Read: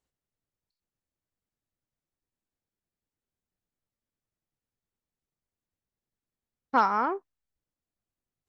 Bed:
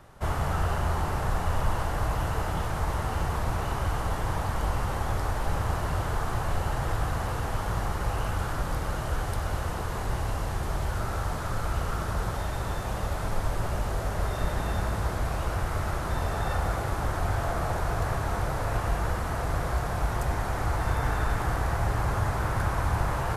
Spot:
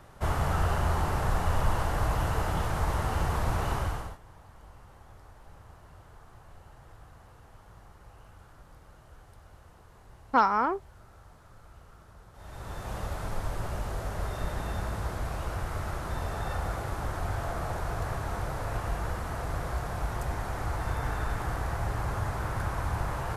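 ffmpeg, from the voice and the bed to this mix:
-filter_complex "[0:a]adelay=3600,volume=1.06[s0];[1:a]volume=8.91,afade=t=out:st=3.74:d=0.44:silence=0.0668344,afade=t=in:st=12.33:d=0.63:silence=0.112202[s1];[s0][s1]amix=inputs=2:normalize=0"

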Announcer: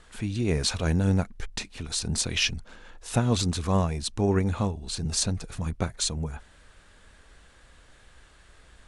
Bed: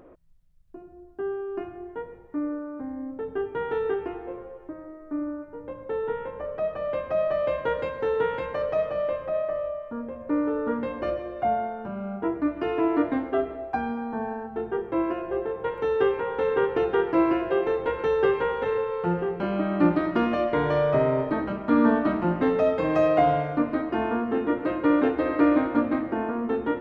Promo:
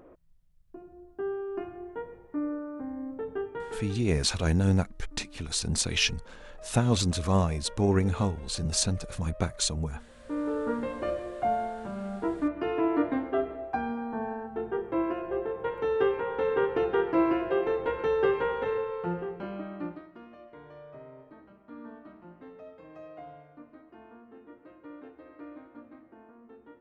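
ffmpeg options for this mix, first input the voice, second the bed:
-filter_complex "[0:a]adelay=3600,volume=0.944[s0];[1:a]volume=5.62,afade=t=out:st=3.21:d=0.81:silence=0.125893,afade=t=in:st=10.14:d=0.42:silence=0.133352,afade=t=out:st=18.57:d=1.51:silence=0.0749894[s1];[s0][s1]amix=inputs=2:normalize=0"

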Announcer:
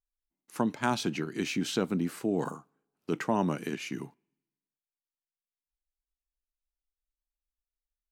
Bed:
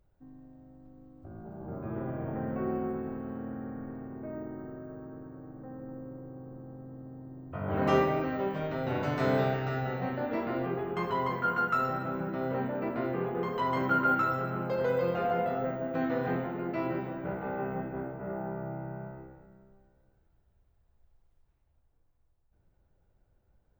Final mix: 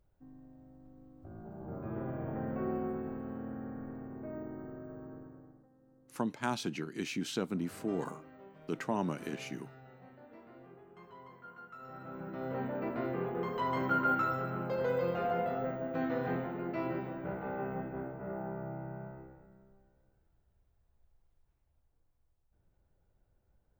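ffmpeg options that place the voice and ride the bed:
-filter_complex "[0:a]adelay=5600,volume=0.531[s0];[1:a]volume=6.31,afade=t=out:st=5.12:d=0.56:silence=0.105925,afade=t=in:st=11.79:d=0.95:silence=0.112202[s1];[s0][s1]amix=inputs=2:normalize=0"

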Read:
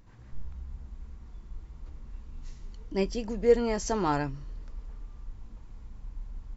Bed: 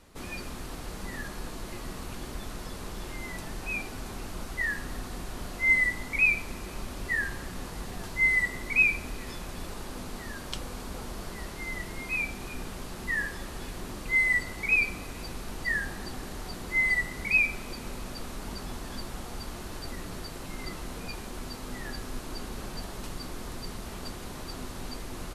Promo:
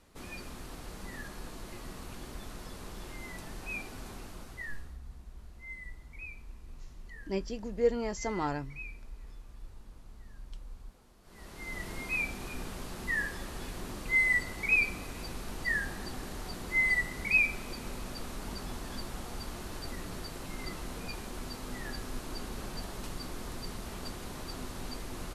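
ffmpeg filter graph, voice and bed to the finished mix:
-filter_complex "[0:a]adelay=4350,volume=0.531[s0];[1:a]volume=5.96,afade=t=out:st=4.08:d=0.9:silence=0.133352,afade=t=in:st=11.23:d=0.67:silence=0.0891251[s1];[s0][s1]amix=inputs=2:normalize=0"

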